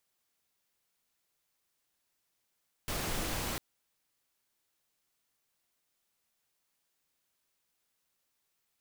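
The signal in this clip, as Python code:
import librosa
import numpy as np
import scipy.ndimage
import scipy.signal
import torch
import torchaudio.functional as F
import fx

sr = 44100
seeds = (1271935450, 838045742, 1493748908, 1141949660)

y = fx.noise_colour(sr, seeds[0], length_s=0.7, colour='pink', level_db=-35.0)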